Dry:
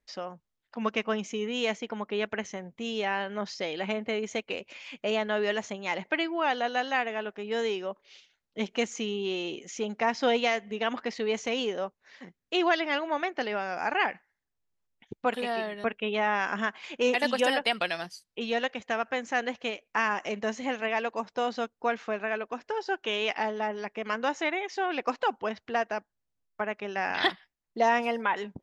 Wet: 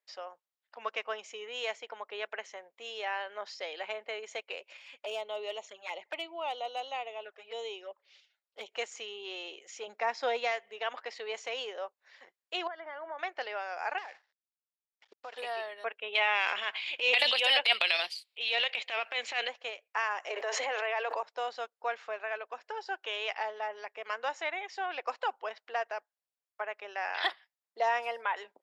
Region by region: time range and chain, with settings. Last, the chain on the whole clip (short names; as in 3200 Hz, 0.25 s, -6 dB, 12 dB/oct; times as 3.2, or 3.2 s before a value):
4.77–8.72 envelope flanger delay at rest 10.1 ms, full sweep at -28 dBFS + hard clip -21.5 dBFS
9.87–10.52 bell 150 Hz +12 dB 1.4 oct + notch 3000 Hz, Q 9.7
12.67–13.19 compressor 12:1, threshold -30 dBFS + polynomial smoothing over 41 samples
13.98–15.38 CVSD 32 kbps + compressor 12:1, threshold -33 dBFS
16.15–19.48 band shelf 3100 Hz +13.5 dB 1.3 oct + transient shaper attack -10 dB, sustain +7 dB
20.3–21.23 steep high-pass 280 Hz 72 dB/oct + high shelf 5700 Hz -10.5 dB + fast leveller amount 100%
whole clip: HPF 500 Hz 24 dB/oct; notch 6200 Hz, Q 10; gain -4.5 dB